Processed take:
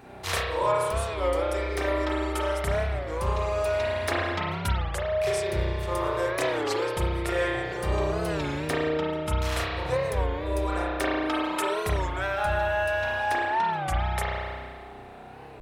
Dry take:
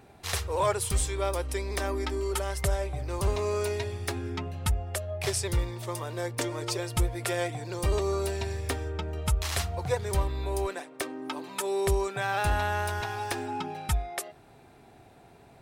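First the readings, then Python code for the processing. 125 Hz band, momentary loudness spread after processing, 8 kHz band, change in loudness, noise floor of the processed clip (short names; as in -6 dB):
0.0 dB, 4 LU, -5.0 dB, +3.0 dB, -43 dBFS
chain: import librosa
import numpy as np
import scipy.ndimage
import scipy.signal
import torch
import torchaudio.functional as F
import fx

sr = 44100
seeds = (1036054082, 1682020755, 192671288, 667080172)

y = fx.peak_eq(x, sr, hz=13000.0, db=-6.0, octaves=2.8)
y = fx.rev_spring(y, sr, rt60_s=1.7, pass_ms=(32,), chirp_ms=25, drr_db=-6.5)
y = fx.rider(y, sr, range_db=10, speed_s=0.5)
y = fx.low_shelf(y, sr, hz=390.0, db=-6.5)
y = fx.record_warp(y, sr, rpm=33.33, depth_cents=160.0)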